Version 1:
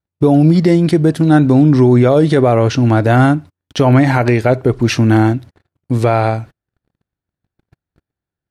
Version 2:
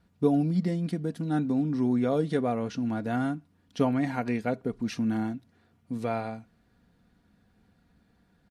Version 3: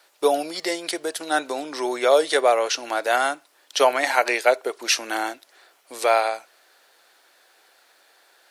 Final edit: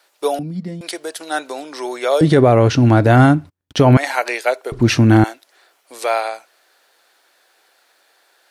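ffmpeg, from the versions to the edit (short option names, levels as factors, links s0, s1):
-filter_complex "[0:a]asplit=2[s0][s1];[2:a]asplit=4[s2][s3][s4][s5];[s2]atrim=end=0.392[s6];[1:a]atrim=start=0.388:end=0.812[s7];[s3]atrim=start=0.808:end=2.212[s8];[s0]atrim=start=2.208:end=3.972[s9];[s4]atrim=start=3.968:end=4.722[s10];[s1]atrim=start=4.718:end=5.242[s11];[s5]atrim=start=5.238[s12];[s6][s7]acrossfade=d=0.004:c1=hsin:c2=hsin[s13];[s13][s8]acrossfade=d=0.004:c1=hsin:c2=hsin[s14];[s14][s9]acrossfade=d=0.004:c1=hsin:c2=hsin[s15];[s15][s10]acrossfade=d=0.004:c1=hsin:c2=hsin[s16];[s16][s11]acrossfade=d=0.004:c1=hsin:c2=hsin[s17];[s17][s12]acrossfade=d=0.004:c1=hsin:c2=hsin"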